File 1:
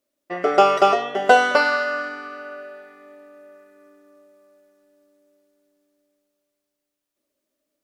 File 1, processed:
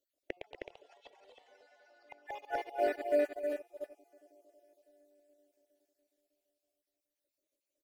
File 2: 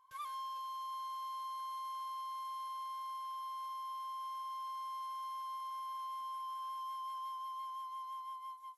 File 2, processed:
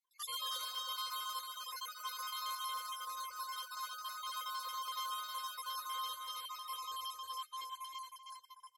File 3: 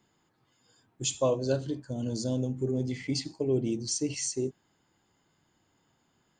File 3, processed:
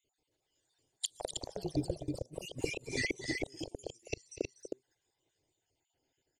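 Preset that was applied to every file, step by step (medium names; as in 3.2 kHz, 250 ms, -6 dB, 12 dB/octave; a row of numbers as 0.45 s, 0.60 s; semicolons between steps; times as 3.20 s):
random holes in the spectrogram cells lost 54%; gate -47 dBFS, range -23 dB; compression 16:1, threshold -35 dBFS; inverted gate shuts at -34 dBFS, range -41 dB; static phaser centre 470 Hz, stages 4; on a send: multi-tap echo 242/244/314 ms -19.5/-14.5/-4.5 dB; on the sum: ever faster or slower copies 159 ms, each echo +3 st, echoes 2, each echo -6 dB; trim +17.5 dB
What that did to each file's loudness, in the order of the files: -18.5 LU, +1.5 LU, -8.5 LU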